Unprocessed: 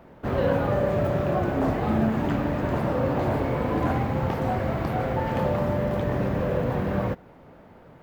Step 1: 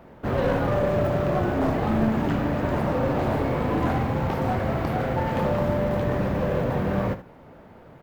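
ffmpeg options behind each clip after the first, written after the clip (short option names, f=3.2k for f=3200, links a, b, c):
-af "aeval=exprs='clip(val(0),-1,0.075)':c=same,aecho=1:1:37|76:0.168|0.2,volume=1.5dB"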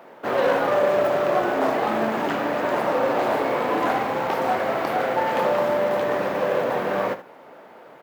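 -af "highpass=440,volume=6dB"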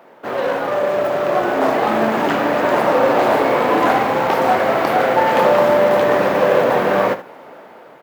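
-af "dynaudnorm=f=570:g=5:m=11.5dB"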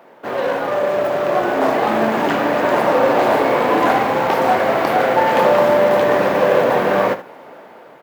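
-af "bandreject=f=1.3k:w=29"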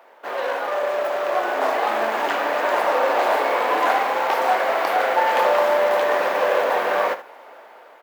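-af "highpass=590,volume=-2dB"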